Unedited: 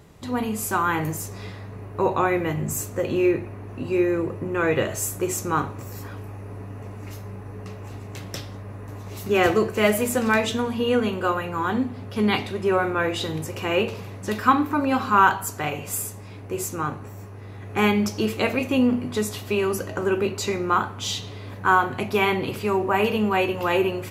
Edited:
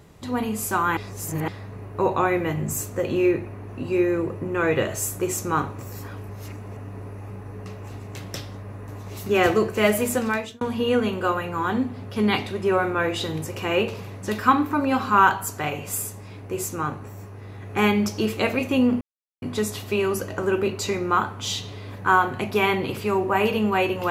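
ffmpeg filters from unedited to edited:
-filter_complex "[0:a]asplit=7[a][b][c][d][e][f][g];[a]atrim=end=0.972[h];[b]atrim=start=0.968:end=1.482,asetpts=PTS-STARTPTS,areverse[i];[c]atrim=start=1.478:end=6.292[j];[d]atrim=start=6.288:end=7.302,asetpts=PTS-STARTPTS,areverse[k];[e]atrim=start=7.298:end=10.61,asetpts=PTS-STARTPTS,afade=t=out:st=2.842:d=0.47[l];[f]atrim=start=10.61:end=19.01,asetpts=PTS-STARTPTS,afade=t=in:d=0.004:c=hsin,afade=t=out:st=8.396:d=0.004:c=hsin,apad=pad_dur=0.41[m];[g]atrim=start=19.01,asetpts=PTS-STARTPTS,afade=t=in:d=0.004:c=hsin[n];[h][i]acrossfade=d=0.004:c1=hsin:c2=hsin[o];[o][j]acrossfade=d=0.004:c1=hsin:c2=hsin[p];[p][k]acrossfade=d=0.004:c1=hsin:c2=hsin[q];[l][m][n]concat=n=3:v=0:a=1[r];[q][r]acrossfade=d=0.004:c1=hsin:c2=hsin"

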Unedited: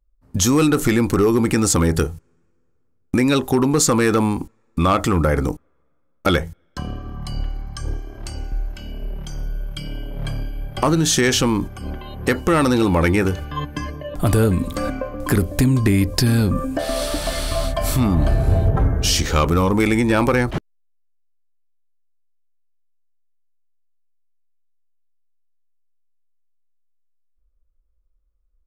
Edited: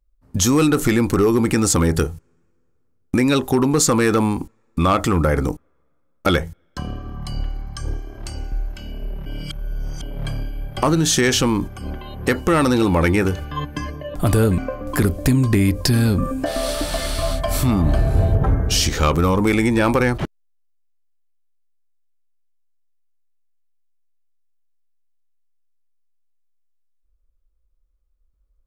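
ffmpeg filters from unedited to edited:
-filter_complex "[0:a]asplit=4[a][b][c][d];[a]atrim=end=9.262[e];[b]atrim=start=9.258:end=10.022,asetpts=PTS-STARTPTS,areverse[f];[c]atrim=start=10.018:end=14.582[g];[d]atrim=start=14.908[h];[e][f]acrossfade=d=0.004:c1=hsin:c2=hsin[i];[i][g]acrossfade=d=0.004:c1=hsin:c2=hsin[j];[j][h]acrossfade=d=0.004:c1=hsin:c2=hsin"

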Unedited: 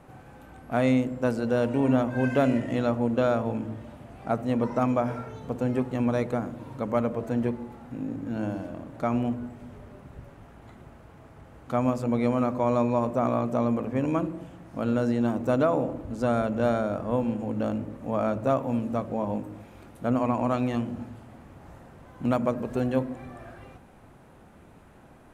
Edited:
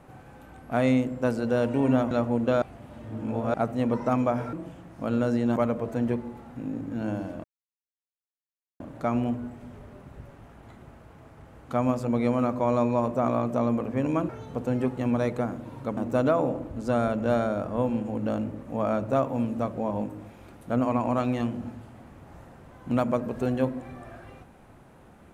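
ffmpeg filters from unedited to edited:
-filter_complex "[0:a]asplit=9[a][b][c][d][e][f][g][h][i];[a]atrim=end=2.112[j];[b]atrim=start=2.808:end=3.322[k];[c]atrim=start=3.318:end=4.242,asetpts=PTS-STARTPTS,areverse[l];[d]atrim=start=4.238:end=5.232[m];[e]atrim=start=14.278:end=15.312[n];[f]atrim=start=6.908:end=8.79,asetpts=PTS-STARTPTS,afade=t=out:st=1.878:d=0.004:c=hsin,apad=pad_dur=1.36[o];[g]atrim=start=8.79:end=14.282,asetpts=PTS-STARTPTS,afade=t=in:d=0.004:c=hsin[p];[h]atrim=start=5.228:end=6.912[q];[i]atrim=start=15.308[r];[j][k]acrossfade=d=0.004:c1=hsin:c2=hsin[s];[s][l]acrossfade=d=0.004:c1=hsin:c2=hsin[t];[t][m]acrossfade=d=0.004:c1=hsin:c2=hsin[u];[u][n]acrossfade=d=0.004:c1=hsin:c2=hsin[v];[o][p]concat=n=2:v=0:a=1[w];[v][w]acrossfade=d=0.004:c1=hsin:c2=hsin[x];[x][q]acrossfade=d=0.004:c1=hsin:c2=hsin[y];[y][r]acrossfade=d=0.004:c1=hsin:c2=hsin"

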